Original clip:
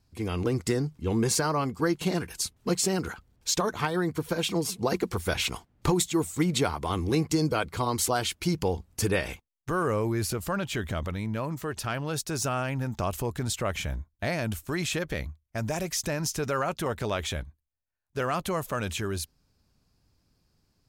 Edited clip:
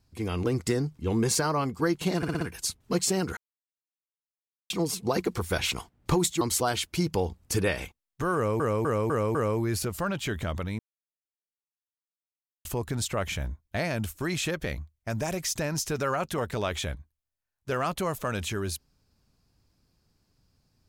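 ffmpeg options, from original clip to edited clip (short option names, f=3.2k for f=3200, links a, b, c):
-filter_complex "[0:a]asplit=14[a][b][c][d][e][f][g][h][i][j][k][l][m][n];[a]atrim=end=2.232[o];[b]atrim=start=2.168:end=2.232[p];[c]atrim=start=2.168:end=2.232[q];[d]atrim=start=2.168:end=2.232[r];[e]atrim=start=2.168:end=3.13,asetpts=PTS-STARTPTS,afade=t=out:st=0.958:d=0.004:c=hsin[s];[f]atrim=start=3.13:end=4.46,asetpts=PTS-STARTPTS,volume=0[t];[g]atrim=start=4.46:end=6.172,asetpts=PTS-STARTPTS,afade=t=in:d=0.004:c=hsin[u];[h]atrim=start=7.888:end=10.082[v];[i]atrim=start=9.828:end=10.082[w];[j]atrim=start=9.828:end=10.082[x];[k]atrim=start=9.828:end=10.082[y];[l]atrim=start=9.828:end=11.27,asetpts=PTS-STARTPTS,afade=t=out:st=1.438:d=0.004:c=hsin[z];[m]atrim=start=11.27:end=13.13,asetpts=PTS-STARTPTS,volume=0[aa];[n]atrim=start=13.13,asetpts=PTS-STARTPTS,afade=t=in:d=0.004:c=hsin[ab];[o][p]acrossfade=d=0.004:c1=hsin:c2=hsin[ac];[ac][q]acrossfade=d=0.004:c1=hsin:c2=hsin[ad];[ad][r]acrossfade=d=0.004:c1=hsin:c2=hsin[ae];[s][t][u]concat=n=3:v=0:a=1[af];[ae][af]acrossfade=d=0.004:c1=hsin:c2=hsin[ag];[ag][v]acrossfade=d=0.004:c1=hsin:c2=hsin[ah];[ah][w]acrossfade=d=0.004:c1=hsin:c2=hsin[ai];[ai][x]acrossfade=d=0.004:c1=hsin:c2=hsin[aj];[aj][y]acrossfade=d=0.004:c1=hsin:c2=hsin[ak];[z][aa][ab]concat=n=3:v=0:a=1[al];[ak][al]acrossfade=d=0.004:c1=hsin:c2=hsin"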